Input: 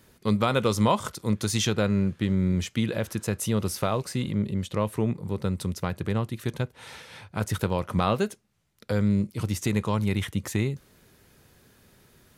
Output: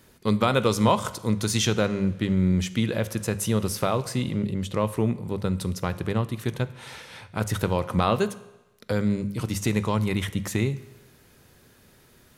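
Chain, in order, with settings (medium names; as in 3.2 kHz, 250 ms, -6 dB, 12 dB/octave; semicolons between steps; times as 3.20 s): hum notches 50/100/150/200 Hz; on a send: reverberation RT60 1.0 s, pre-delay 17 ms, DRR 14.5 dB; on the sum: trim +2 dB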